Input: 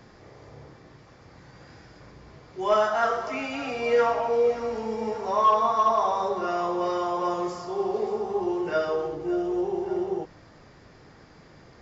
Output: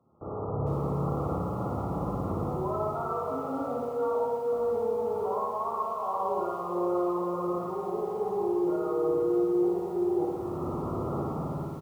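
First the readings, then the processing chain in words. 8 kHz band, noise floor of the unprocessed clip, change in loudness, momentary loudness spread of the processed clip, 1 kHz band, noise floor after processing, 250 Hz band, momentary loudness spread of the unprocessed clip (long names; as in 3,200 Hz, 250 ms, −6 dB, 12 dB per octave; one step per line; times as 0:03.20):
can't be measured, −52 dBFS, −4.5 dB, 5 LU, −6.0 dB, −35 dBFS, +2.0 dB, 9 LU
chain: fade-out on the ending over 3.32 s
camcorder AGC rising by 32 dB per second
high-pass filter 81 Hz 12 dB per octave
noise gate with hold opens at −35 dBFS
brickwall limiter −19 dBFS, peak gain reduction 7.5 dB
reversed playback
downward compressor 10 to 1, threshold −34 dBFS, peak gain reduction 12 dB
reversed playback
linear-phase brick-wall low-pass 1,400 Hz
double-tracking delay 12 ms −13 dB
flutter between parallel walls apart 9.7 metres, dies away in 1.3 s
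feedback echo at a low word length 453 ms, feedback 35%, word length 9 bits, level −9 dB
level +3 dB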